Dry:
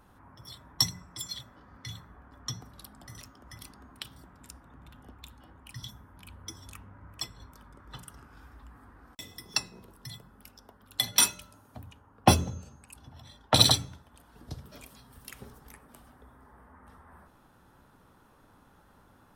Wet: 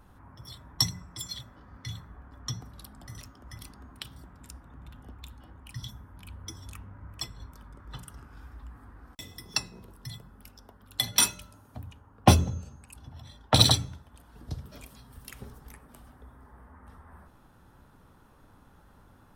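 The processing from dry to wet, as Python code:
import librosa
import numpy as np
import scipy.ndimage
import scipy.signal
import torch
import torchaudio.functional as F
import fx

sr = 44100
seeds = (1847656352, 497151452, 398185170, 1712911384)

y = fx.low_shelf(x, sr, hz=130.0, db=8.0)
y = fx.doppler_dist(y, sr, depth_ms=0.12)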